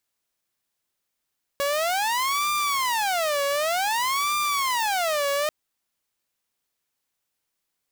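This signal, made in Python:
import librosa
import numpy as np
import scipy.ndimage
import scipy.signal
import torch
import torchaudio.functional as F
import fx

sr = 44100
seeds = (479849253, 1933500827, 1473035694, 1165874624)

y = fx.siren(sr, length_s=3.89, kind='wail', low_hz=562.0, high_hz=1190.0, per_s=0.54, wave='saw', level_db=-19.5)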